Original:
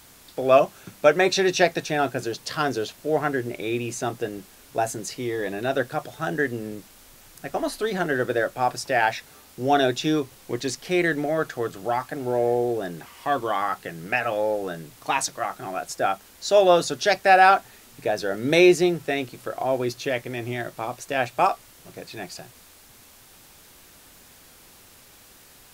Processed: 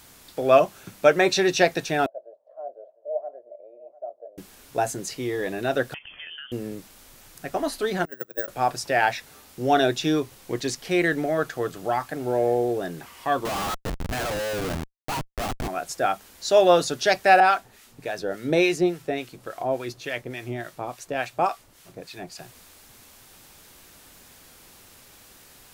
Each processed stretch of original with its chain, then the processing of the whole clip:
2.06–4.38 s: Butterworth band-pass 610 Hz, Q 5.2 + delay 701 ms -18 dB
5.94–6.52 s: compression 8:1, threshold -36 dBFS + frequency inversion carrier 3.3 kHz
8.05–8.48 s: careless resampling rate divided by 2×, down none, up zero stuff + gate -18 dBFS, range -29 dB
13.45–15.68 s: low-pass 2.5 kHz 24 dB/octave + Schmitt trigger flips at -32 dBFS
17.40–22.40 s: treble shelf 12 kHz -3.5 dB + harmonic tremolo 3.5 Hz, crossover 1 kHz
whole clip: none

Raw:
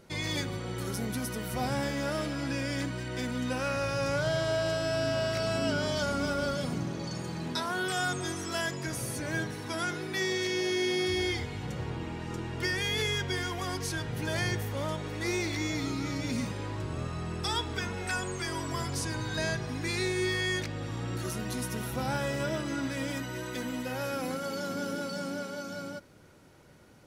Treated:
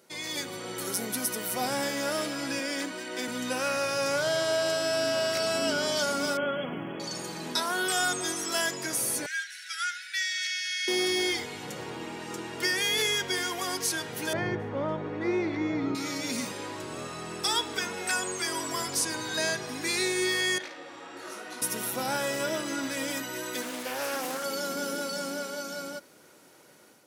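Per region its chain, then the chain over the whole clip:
2.59–3.28 s: high-pass 190 Hz 24 dB/octave + treble shelf 5.3 kHz -4 dB
6.37–7.00 s: brick-wall FIR low-pass 3.4 kHz + short-mantissa float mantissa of 8-bit
9.26–10.88 s: brick-wall FIR high-pass 1.3 kHz + distance through air 51 m
14.33–15.95 s: low-pass 1.6 kHz + bass shelf 290 Hz +10 dB
20.58–21.62 s: band-pass filter 1.2 kHz, Q 0.55 + flutter echo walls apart 9.3 m, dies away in 0.48 s + detune thickener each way 43 cents
23.62–24.44 s: bass shelf 200 Hz -8 dB + loudspeaker Doppler distortion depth 0.29 ms
whole clip: treble shelf 6.1 kHz +10.5 dB; level rider gain up to 6 dB; high-pass 280 Hz 12 dB/octave; trim -3.5 dB

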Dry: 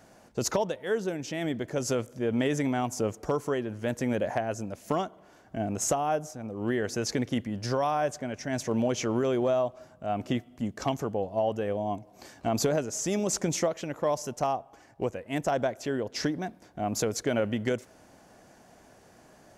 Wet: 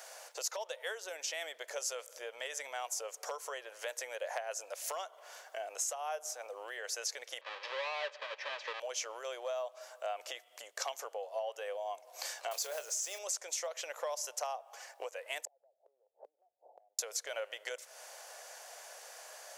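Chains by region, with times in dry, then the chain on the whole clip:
7.41–8.80 s: square wave that keeps the level + low-pass 3.5 kHz 24 dB/octave + comb of notches 710 Hz
12.51–13.19 s: block-companded coder 5-bit + doubling 26 ms -11.5 dB
15.45–16.99 s: Chebyshev band-pass 190–860 Hz, order 5 + compression, threshold -33 dBFS + inverted gate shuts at -40 dBFS, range -34 dB
whole clip: treble shelf 2.2 kHz +12 dB; compression 8:1, threshold -37 dBFS; elliptic high-pass 510 Hz, stop band 60 dB; trim +3 dB

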